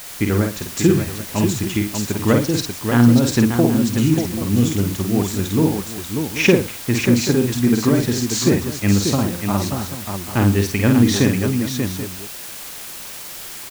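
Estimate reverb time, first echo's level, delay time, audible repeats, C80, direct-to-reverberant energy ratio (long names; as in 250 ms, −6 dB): no reverb audible, −4.5 dB, 50 ms, 4, no reverb audible, no reverb audible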